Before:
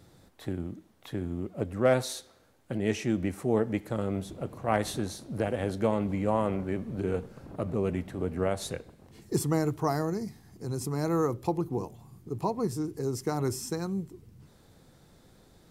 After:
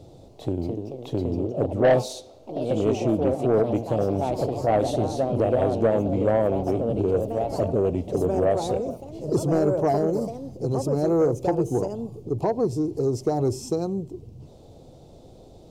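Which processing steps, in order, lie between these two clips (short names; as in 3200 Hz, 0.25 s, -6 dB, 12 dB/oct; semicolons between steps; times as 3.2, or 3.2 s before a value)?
in parallel at +0.5 dB: compressor, threshold -36 dBFS, peak gain reduction 16.5 dB; on the sum: echoes that change speed 0.288 s, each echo +3 st, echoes 3, each echo -6 dB; EQ curve 130 Hz 0 dB, 190 Hz -5 dB, 270 Hz 0 dB, 670 Hz +5 dB, 1700 Hz -23 dB, 2700 Hz -7 dB, 6600 Hz -7 dB, 11000 Hz -15 dB; soft clip -16 dBFS, distortion -15 dB; gain +4 dB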